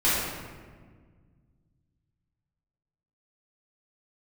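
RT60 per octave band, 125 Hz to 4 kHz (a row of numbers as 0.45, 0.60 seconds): 3.1, 2.5, 1.8, 1.5, 1.3, 0.90 seconds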